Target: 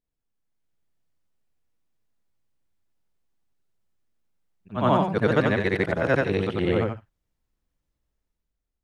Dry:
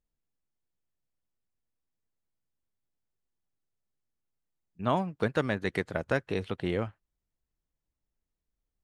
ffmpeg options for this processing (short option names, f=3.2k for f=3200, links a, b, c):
-filter_complex "[0:a]afftfilt=real='re':imag='-im':win_size=8192:overlap=0.75,highshelf=f=5.3k:g=-6,acrossover=split=380|4500[a][b][c];[c]alimiter=level_in=30.5dB:limit=-24dB:level=0:latency=1,volume=-30.5dB[d];[a][b][d]amix=inputs=3:normalize=0,dynaudnorm=f=150:g=9:m=8dB,volume=4.5dB"